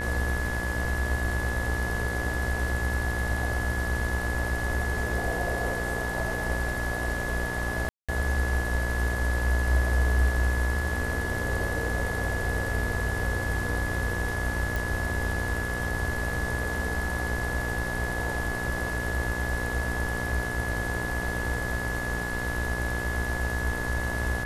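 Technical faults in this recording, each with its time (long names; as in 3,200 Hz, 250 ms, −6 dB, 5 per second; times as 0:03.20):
mains buzz 60 Hz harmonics 36 −33 dBFS
whistle 1,700 Hz −32 dBFS
0:07.89–0:08.09: drop-out 196 ms
0:14.76: click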